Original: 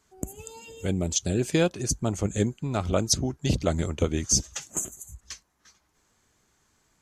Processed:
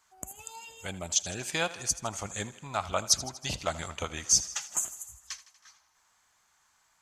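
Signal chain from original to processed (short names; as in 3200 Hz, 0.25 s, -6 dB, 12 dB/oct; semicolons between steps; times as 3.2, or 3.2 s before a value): resonant low shelf 580 Hz -13.5 dB, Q 1.5; thinning echo 80 ms, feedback 65%, high-pass 210 Hz, level -16.5 dB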